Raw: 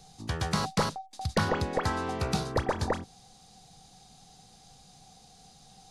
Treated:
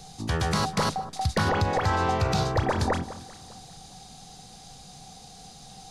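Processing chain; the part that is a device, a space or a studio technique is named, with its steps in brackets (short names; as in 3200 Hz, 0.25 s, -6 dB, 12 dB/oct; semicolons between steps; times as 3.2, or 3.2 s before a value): 1.5–2.63 thirty-one-band EQ 100 Hz +9 dB, 250 Hz -10 dB, 400 Hz -3 dB, 800 Hz +3 dB, 10000 Hz -12 dB; clipper into limiter (hard clip -16.5 dBFS, distortion -27 dB; limiter -24 dBFS, peak gain reduction 7.5 dB); echo with dull and thin repeats by turns 0.199 s, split 1400 Hz, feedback 53%, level -14 dB; gain +8.5 dB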